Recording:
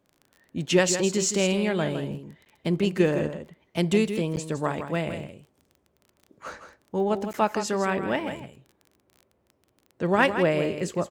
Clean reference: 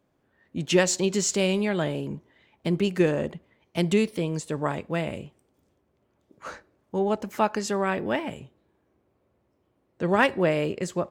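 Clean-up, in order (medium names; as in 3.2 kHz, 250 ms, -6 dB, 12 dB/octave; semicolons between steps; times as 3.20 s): de-click; interpolate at 2.45/4.36/7.33 s, 9.6 ms; inverse comb 162 ms -9.5 dB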